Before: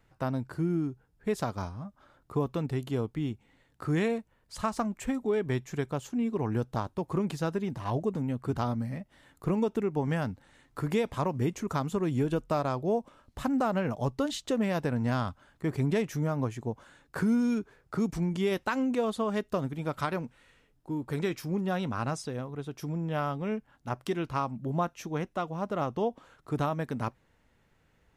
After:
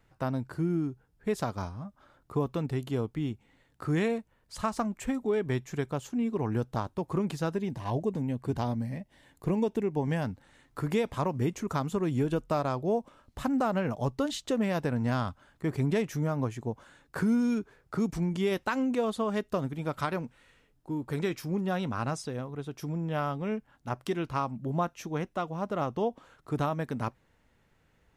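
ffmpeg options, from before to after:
-filter_complex "[0:a]asettb=1/sr,asplit=3[a][b][c];[a]atrim=end=7.554[d];[b]atrim=start=7.55:end=10.24,asetpts=PTS-STARTPTS,afade=t=in:d=0.004:c=qsin,afade=t=out:st=2.686:d=0.004:c=qsin,equalizer=f=1.3k:w=5.9:g=-12[e];[c]atrim=start=10.236[f];[d][e]acrossfade=d=0.004:c1=hsin:c2=qsin[g];[g][f]acrossfade=d=0.004:c1=qsin:c2=hsin"

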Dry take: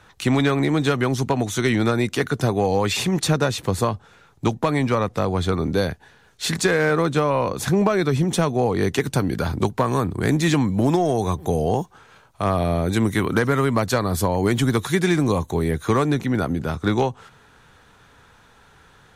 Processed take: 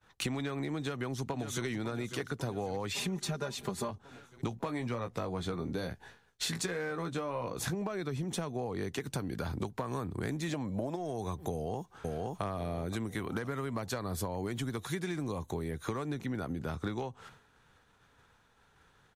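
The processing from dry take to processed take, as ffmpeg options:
-filter_complex "[0:a]asplit=2[a][b];[b]afade=t=in:st=0.78:d=0.01,afade=t=out:st=1.66:d=0.01,aecho=0:1:550|1100|1650|2200|2750|3300|3850:0.266073|0.159644|0.0957861|0.0574717|0.034483|0.0206898|0.0124139[c];[a][c]amix=inputs=2:normalize=0,asettb=1/sr,asplit=3[d][e][f];[d]atrim=end=2.964[g];[e]atrim=start=2.96:end=3.91,asetpts=PTS-STARTPTS,afade=t=in:d=0.004:c=qsin,afade=t=out:st=0.946:d=0.004:c=qsin,aecho=1:1:5:0.88,atrim=end_sample=41895[h];[f]atrim=start=3.906[i];[g][h]acrossfade=d=0.004:c1=hsin:c2=qsin[j];[j][i]acrossfade=d=0.004:c1=qsin:c2=hsin,asettb=1/sr,asplit=3[k][l][m];[k]atrim=end=4.494[n];[l]atrim=start=4.49:end=7.75,asetpts=PTS-STARTPTS,afade=t=in:d=0.004:c=qsin,afade=t=out:st=3.256:d=0.004:c=qsin,asplit=2[o][p];[p]adelay=17,volume=-7dB[q];[o][q]amix=inputs=2:normalize=0,atrim=end_sample=143766[r];[m]atrim=start=7.746[s];[n][r]acrossfade=d=0.004:c1=hsin:c2=qsin[t];[t][s]acrossfade=d=0.004:c1=qsin:c2=hsin,asettb=1/sr,asplit=3[u][v][w];[u]atrim=end=10.494[x];[v]atrim=start=10.49:end=10.96,asetpts=PTS-STARTPTS,afade=t=in:d=0.004:c=qsin,afade=t=out:st=0.466:d=0.004:c=qsin,equalizer=f=590:t=o:w=0.57:g=13.5[y];[w]atrim=start=10.956[z];[x][y]acrossfade=d=0.004:c1=hsin:c2=qsin[aa];[aa][z]acrossfade=d=0.004:c1=qsin:c2=hsin,asplit=2[ab][ac];[ac]afade=t=in:st=11.52:d=0.01,afade=t=out:st=12.43:d=0.01,aecho=0:1:520|1040|1560|2080|2600|3120|3640:0.375837|0.206711|0.113691|0.0625299|0.0343915|0.0189153|0.0104034[ad];[ab][ad]amix=inputs=2:normalize=0,agate=range=-33dB:threshold=-43dB:ratio=3:detection=peak,acompressor=threshold=-30dB:ratio=16,volume=-2dB"

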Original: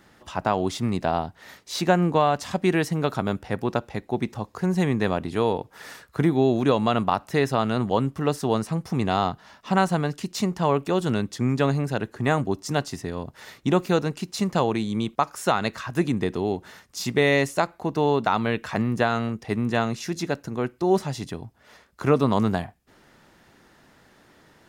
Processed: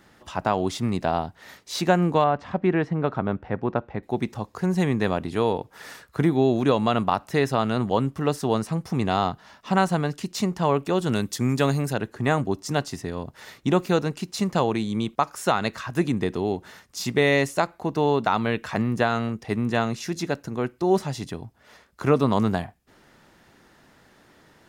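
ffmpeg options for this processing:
-filter_complex "[0:a]asettb=1/sr,asplit=3[a][b][c];[a]atrim=end=2.244[d];[b]atrim=start=2.24:end=4.03,asetpts=PTS-STARTPTS,afade=t=in:d=0.004:c=qsin,afade=t=out:st=1.786:d=0.004:c=qsin,lowpass=1.9k[e];[c]atrim=start=4.026[f];[d][e]acrossfade=d=0.004:c1=hsin:c2=qsin[g];[g][f]acrossfade=d=0.004:c1=qsin:c2=hsin,asettb=1/sr,asplit=3[h][i][j];[h]atrim=end=11.124[k];[i]atrim=start=11.12:end=11.93,asetpts=PTS-STARTPTS,afade=t=in:d=0.004:c=qsin,afade=t=out:st=0.806:d=0.004:c=qsin,aemphasis=mode=production:type=50kf[l];[j]atrim=start=11.926[m];[k][l]acrossfade=d=0.004:c1=hsin:c2=qsin[n];[n][m]acrossfade=d=0.004:c1=qsin:c2=hsin"

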